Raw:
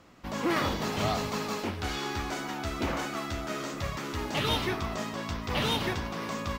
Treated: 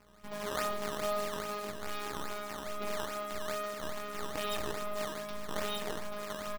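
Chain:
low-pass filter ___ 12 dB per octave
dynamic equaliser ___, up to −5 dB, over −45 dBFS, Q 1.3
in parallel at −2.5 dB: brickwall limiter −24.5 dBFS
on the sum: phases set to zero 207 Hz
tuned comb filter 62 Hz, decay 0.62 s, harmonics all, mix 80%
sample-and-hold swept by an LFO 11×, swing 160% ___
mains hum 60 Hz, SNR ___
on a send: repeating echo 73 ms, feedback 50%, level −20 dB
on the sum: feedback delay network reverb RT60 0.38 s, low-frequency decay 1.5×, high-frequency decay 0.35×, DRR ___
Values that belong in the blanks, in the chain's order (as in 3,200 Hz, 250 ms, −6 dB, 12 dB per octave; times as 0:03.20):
6,000 Hz, 190 Hz, 2.4 Hz, 34 dB, 15 dB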